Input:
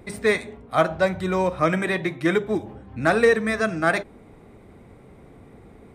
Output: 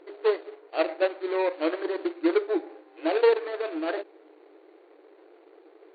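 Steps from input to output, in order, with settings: median filter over 41 samples; FFT band-pass 300–4600 Hz

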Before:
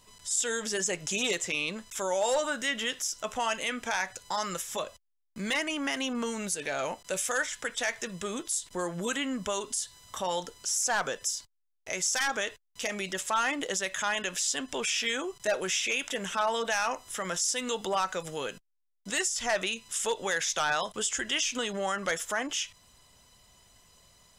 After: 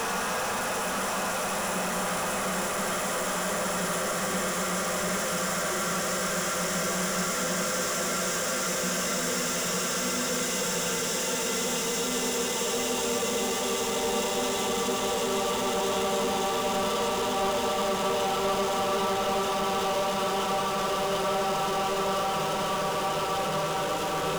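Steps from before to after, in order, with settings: tremolo saw up 1.5 Hz, depth 75%; Paulstretch 19×, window 1.00 s, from 16.94; power-law curve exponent 0.35; on a send: reverb RT60 0.20 s, pre-delay 76 ms, DRR 13 dB; on the sum: gain -3 dB

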